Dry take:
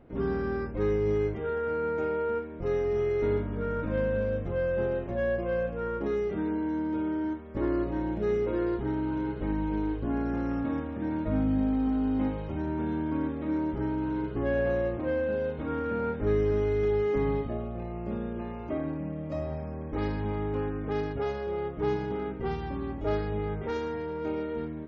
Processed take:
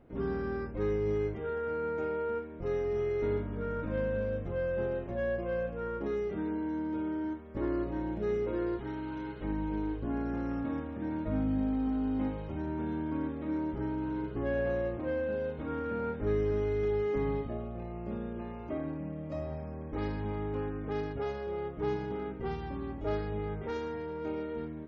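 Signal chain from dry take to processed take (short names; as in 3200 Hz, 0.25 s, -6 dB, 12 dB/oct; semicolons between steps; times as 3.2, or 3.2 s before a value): 8.78–9.44 tilt shelf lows -5 dB, about 1100 Hz; gain -4 dB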